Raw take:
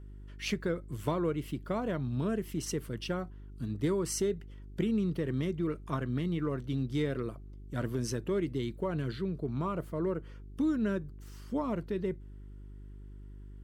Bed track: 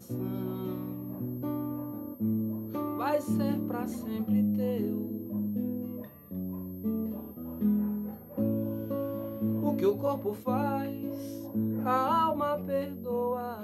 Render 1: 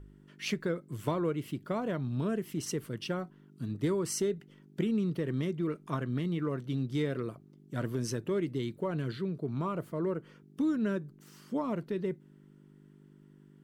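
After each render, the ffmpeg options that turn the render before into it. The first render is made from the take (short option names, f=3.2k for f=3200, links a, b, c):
-af "bandreject=f=50:t=h:w=4,bandreject=f=100:t=h:w=4"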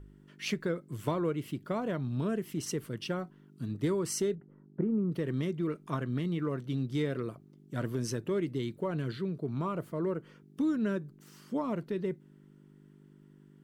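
-filter_complex "[0:a]asettb=1/sr,asplit=3[a][b][c];[a]atrim=end=4.354[d];[b]atrim=start=4.35:end=5.12,asetpts=PTS-STARTPTS,afade=t=in:d=0.004:c=qsin,afade=t=out:st=0.766:d=0.004:c=qsin,lowpass=f=1.3k:w=0.5412,lowpass=f=1.3k:w=1.3066[e];[c]atrim=start=5.116[f];[d][e]acrossfade=d=0.004:c1=hsin:c2=qsin[g];[g][f]acrossfade=d=0.004:c1=qsin:c2=hsin"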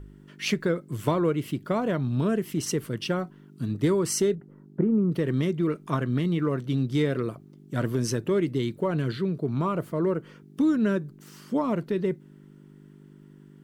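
-af "volume=7dB"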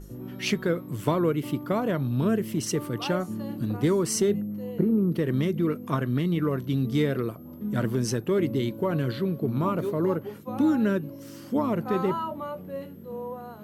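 -filter_complex "[1:a]volume=-5dB[a];[0:a][a]amix=inputs=2:normalize=0"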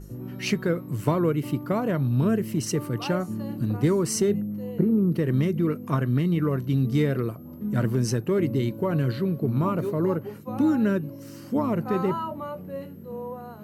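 -af "equalizer=f=120:t=o:w=1.2:g=4.5,bandreject=f=3.4k:w=7"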